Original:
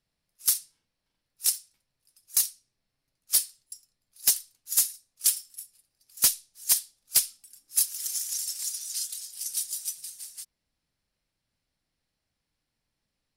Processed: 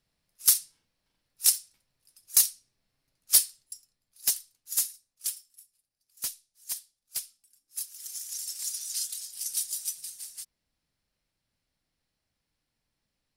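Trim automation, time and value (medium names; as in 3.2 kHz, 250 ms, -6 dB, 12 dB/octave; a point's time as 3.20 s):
3.39 s +3 dB
4.31 s -4 dB
4.86 s -4 dB
5.52 s -12 dB
7.77 s -12 dB
8.78 s 0 dB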